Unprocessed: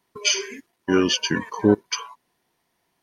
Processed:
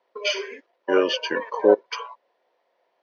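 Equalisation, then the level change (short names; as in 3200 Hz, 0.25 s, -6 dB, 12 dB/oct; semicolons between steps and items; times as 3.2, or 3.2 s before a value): resonant high-pass 540 Hz, resonance Q 5.6; LPF 6100 Hz 24 dB/oct; air absorption 180 m; 0.0 dB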